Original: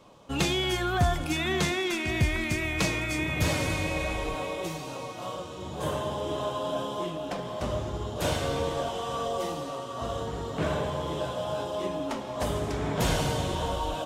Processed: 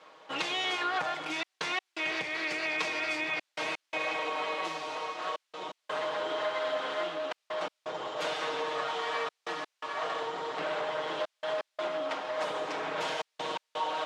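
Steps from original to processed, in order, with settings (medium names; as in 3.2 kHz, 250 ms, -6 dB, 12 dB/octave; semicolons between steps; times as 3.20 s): comb filter that takes the minimum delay 6.4 ms; compression, threshold -30 dBFS, peak gain reduction 9 dB; trance gate "xxxxxxxx.x." 84 bpm -60 dB; added noise blue -73 dBFS; band-pass 570–4100 Hz; trim +5 dB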